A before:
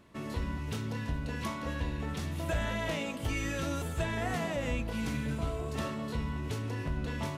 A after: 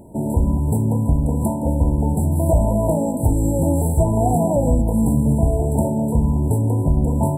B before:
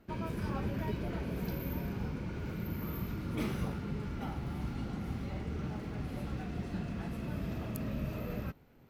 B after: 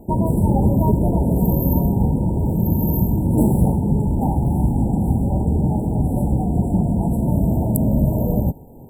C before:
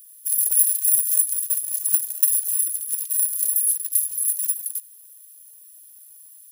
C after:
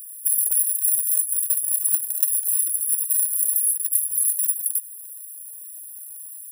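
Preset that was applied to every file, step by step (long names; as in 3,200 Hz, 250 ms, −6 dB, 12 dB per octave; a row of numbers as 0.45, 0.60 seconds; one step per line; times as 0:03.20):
dynamic equaliser 430 Hz, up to −4 dB, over −49 dBFS, Q 1.7
downward compressor 5 to 1, threshold −27 dBFS
linear-phase brick-wall band-stop 980–7,400 Hz
loudness normalisation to −19 LKFS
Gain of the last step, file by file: +18.0, +20.0, +8.5 decibels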